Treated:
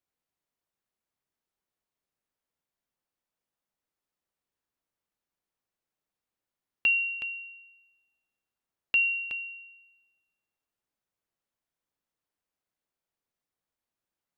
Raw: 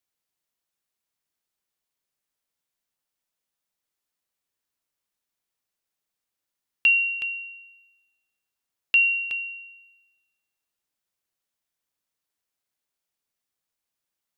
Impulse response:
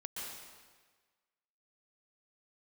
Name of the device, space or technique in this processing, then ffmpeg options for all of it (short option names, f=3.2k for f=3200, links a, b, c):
through cloth: -af "highshelf=f=2.1k:g=-11,volume=1.5dB"